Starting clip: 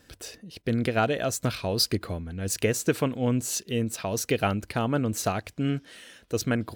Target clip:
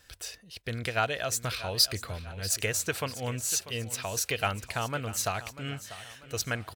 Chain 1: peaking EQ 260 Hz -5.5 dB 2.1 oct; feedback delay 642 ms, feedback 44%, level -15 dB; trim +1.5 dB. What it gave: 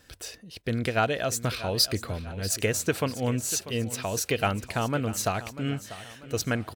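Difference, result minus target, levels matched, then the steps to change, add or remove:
250 Hz band +7.5 dB
change: peaking EQ 260 Hz -16.5 dB 2.1 oct

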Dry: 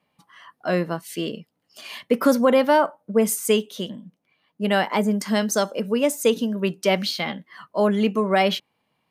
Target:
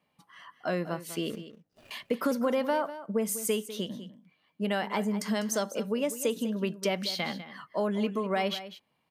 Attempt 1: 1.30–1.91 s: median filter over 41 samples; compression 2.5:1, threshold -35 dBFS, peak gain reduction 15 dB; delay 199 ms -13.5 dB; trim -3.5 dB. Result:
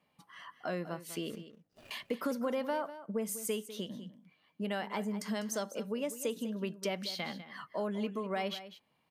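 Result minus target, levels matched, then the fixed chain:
compression: peak gain reduction +6.5 dB
1.30–1.91 s: median filter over 41 samples; compression 2.5:1, threshold -24.5 dBFS, peak gain reduction 8.5 dB; delay 199 ms -13.5 dB; trim -3.5 dB

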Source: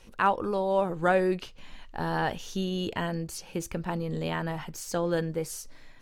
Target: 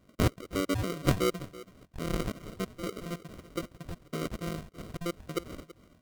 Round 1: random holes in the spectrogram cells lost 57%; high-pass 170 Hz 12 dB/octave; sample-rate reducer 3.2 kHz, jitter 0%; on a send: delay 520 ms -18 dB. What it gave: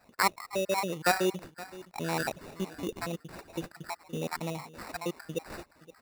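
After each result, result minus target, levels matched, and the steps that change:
sample-rate reducer: distortion -21 dB; echo 190 ms late
change: sample-rate reducer 860 Hz, jitter 0%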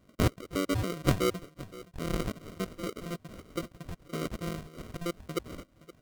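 echo 190 ms late
change: delay 330 ms -18 dB

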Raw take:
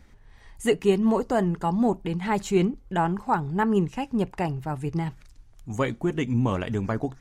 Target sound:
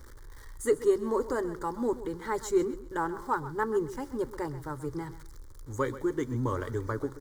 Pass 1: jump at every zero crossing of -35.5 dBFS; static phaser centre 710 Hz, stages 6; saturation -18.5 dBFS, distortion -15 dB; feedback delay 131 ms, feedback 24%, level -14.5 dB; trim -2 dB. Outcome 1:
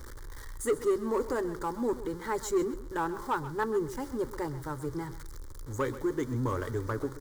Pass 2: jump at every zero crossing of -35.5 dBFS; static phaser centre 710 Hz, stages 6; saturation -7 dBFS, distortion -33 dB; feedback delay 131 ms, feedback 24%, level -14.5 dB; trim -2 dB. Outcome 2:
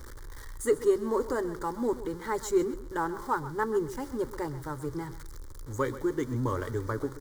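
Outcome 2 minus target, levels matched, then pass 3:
jump at every zero crossing: distortion +6 dB
jump at every zero crossing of -42 dBFS; static phaser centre 710 Hz, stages 6; saturation -7 dBFS, distortion -33 dB; feedback delay 131 ms, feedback 24%, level -14.5 dB; trim -2 dB

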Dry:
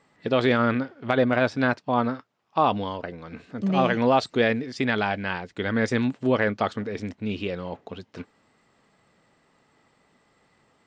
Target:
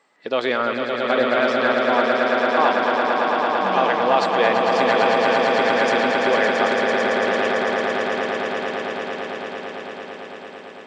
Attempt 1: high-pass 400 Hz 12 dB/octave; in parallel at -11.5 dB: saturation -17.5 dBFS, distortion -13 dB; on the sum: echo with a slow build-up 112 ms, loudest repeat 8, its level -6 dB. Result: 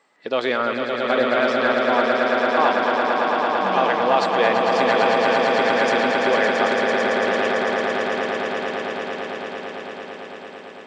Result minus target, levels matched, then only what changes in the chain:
saturation: distortion +9 dB
change: saturation -10.5 dBFS, distortion -22 dB

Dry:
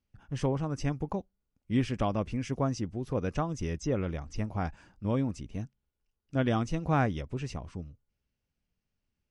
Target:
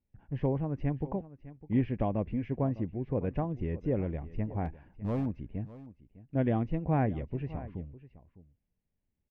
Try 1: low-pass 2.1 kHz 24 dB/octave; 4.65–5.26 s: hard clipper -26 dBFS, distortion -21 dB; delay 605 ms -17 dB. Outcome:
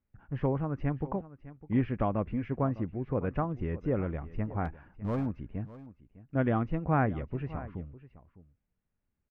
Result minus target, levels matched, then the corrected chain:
1 kHz band +3.0 dB
low-pass 2.1 kHz 24 dB/octave; peaking EQ 1.3 kHz -14 dB 0.61 oct; 4.65–5.26 s: hard clipper -26 dBFS, distortion -21 dB; delay 605 ms -17 dB

